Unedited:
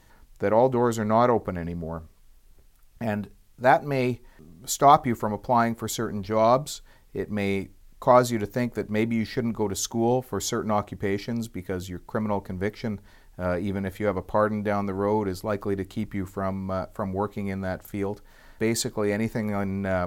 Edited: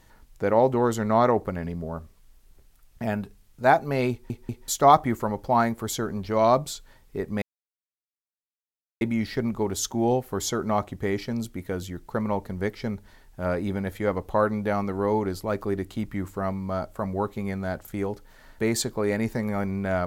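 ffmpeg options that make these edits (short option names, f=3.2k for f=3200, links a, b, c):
-filter_complex "[0:a]asplit=6[a][b][c][d][e][f];[a]atrim=end=4.302[g];[b]atrim=start=4.108:end=4.302[h];[c]atrim=start=4.108:end=4.302[i];[d]atrim=start=4.678:end=7.42,asetpts=PTS-STARTPTS,afade=t=out:st=2.738:d=0.004:c=hsin[j];[e]atrim=start=7.42:end=9.01,asetpts=PTS-STARTPTS,volume=0[k];[f]atrim=start=9.01,asetpts=PTS-STARTPTS,afade=t=in:d=0.004:c=hsin[l];[g][h]acrossfade=d=0.004:c1=hsin:c2=hsin[m];[m][i]acrossfade=d=0.004:c1=hsin:c2=hsin[n];[j][k][l]concat=n=3:v=0:a=1[o];[n][o]acrossfade=d=0.004:c1=hsin:c2=hsin"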